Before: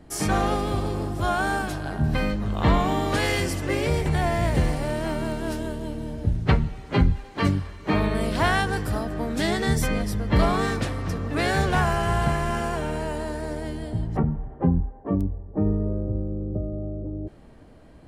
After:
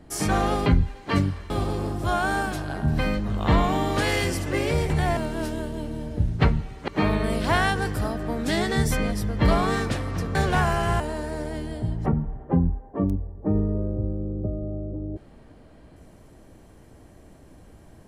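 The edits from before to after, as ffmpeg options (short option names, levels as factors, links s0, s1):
-filter_complex "[0:a]asplit=7[s0][s1][s2][s3][s4][s5][s6];[s0]atrim=end=0.662[s7];[s1]atrim=start=6.948:end=7.792[s8];[s2]atrim=start=0.658:end=4.332[s9];[s3]atrim=start=5.238:end=6.952[s10];[s4]atrim=start=7.788:end=11.262[s11];[s5]atrim=start=11.548:end=12.202[s12];[s6]atrim=start=13.108[s13];[s7][s8]acrossfade=d=0.004:c1=hsin:c2=hsin[s14];[s14][s9]acrossfade=d=0.004:c1=hsin:c2=hsin[s15];[s15][s10]acrossfade=d=0.004:c1=hsin:c2=hsin[s16];[s16][s11]acrossfade=d=0.004:c1=hsin:c2=hsin[s17];[s17][s12]acrossfade=d=0.004:c1=hsin:c2=hsin[s18];[s18][s13]acrossfade=d=0.004:c1=hsin:c2=hsin"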